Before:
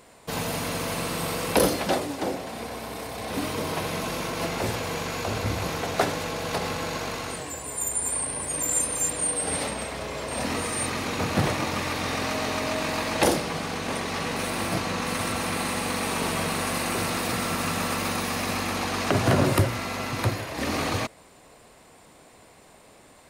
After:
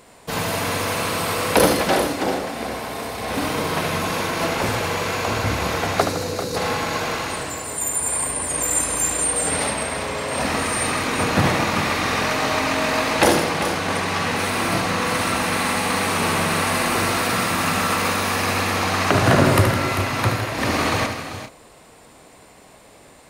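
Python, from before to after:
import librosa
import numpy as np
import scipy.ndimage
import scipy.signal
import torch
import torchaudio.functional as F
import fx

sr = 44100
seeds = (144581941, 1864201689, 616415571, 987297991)

y = fx.spec_box(x, sr, start_s=6.01, length_s=0.55, low_hz=560.0, high_hz=3700.0, gain_db=-12)
y = fx.echo_multitap(y, sr, ms=(74, 160, 393, 425), db=(-7.0, -12.5, -10.0, -15.5))
y = fx.dynamic_eq(y, sr, hz=1500.0, q=0.71, threshold_db=-38.0, ratio=4.0, max_db=4)
y = y * 10.0 ** (3.5 / 20.0)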